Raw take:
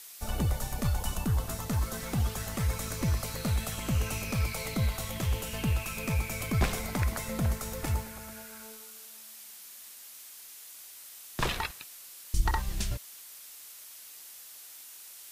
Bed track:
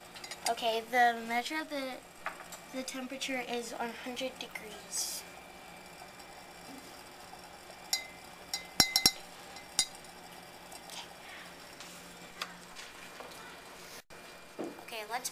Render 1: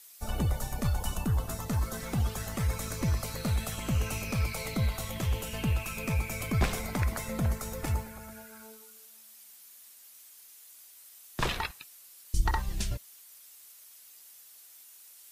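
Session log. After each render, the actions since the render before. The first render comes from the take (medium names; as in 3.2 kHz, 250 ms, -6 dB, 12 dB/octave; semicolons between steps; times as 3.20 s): noise reduction 8 dB, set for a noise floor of -49 dBFS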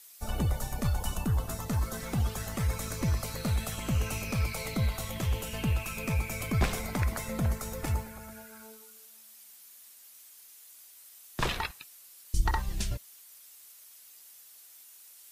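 no audible change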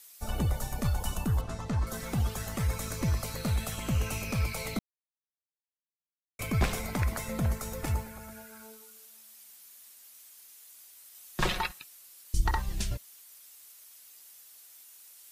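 1.41–1.87 s: distance through air 90 m; 4.79–6.39 s: mute; 11.14–11.79 s: comb 5.5 ms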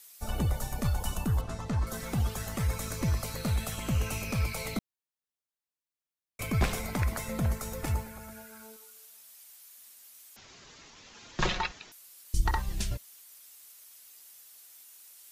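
8.76–9.78 s: peaking EQ 240 Hz -12 dB; 10.36–11.92 s: careless resampling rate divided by 3×, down none, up filtered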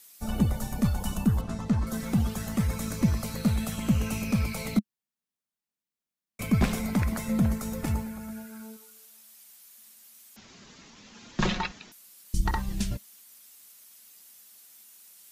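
peaking EQ 210 Hz +12.5 dB 0.71 oct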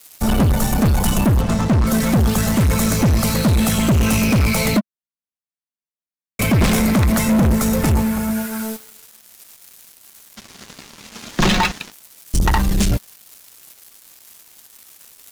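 waveshaping leveller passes 5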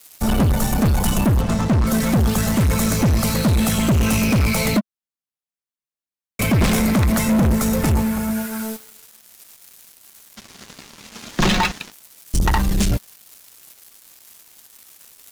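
trim -1.5 dB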